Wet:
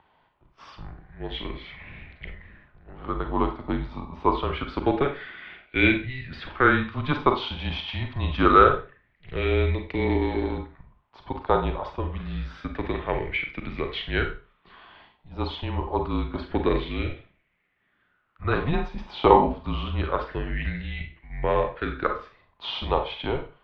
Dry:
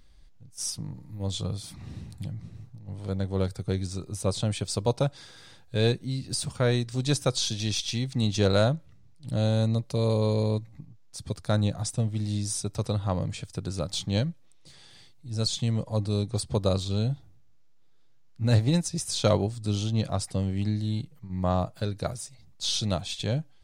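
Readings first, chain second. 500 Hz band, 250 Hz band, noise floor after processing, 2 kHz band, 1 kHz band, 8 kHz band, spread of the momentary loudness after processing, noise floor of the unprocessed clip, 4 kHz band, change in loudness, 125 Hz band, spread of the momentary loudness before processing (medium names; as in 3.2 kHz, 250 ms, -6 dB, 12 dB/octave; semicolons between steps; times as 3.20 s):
+3.5 dB, +1.5 dB, -68 dBFS, +12.5 dB, +13.0 dB, under -35 dB, 18 LU, -53 dBFS, -2.5 dB, +2.5 dB, -5.0 dB, 13 LU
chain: Schroeder reverb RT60 0.34 s, combs from 32 ms, DRR 5 dB; mistuned SSB -140 Hz 200–3200 Hz; sweeping bell 0.26 Hz 880–2200 Hz +17 dB; trim +3 dB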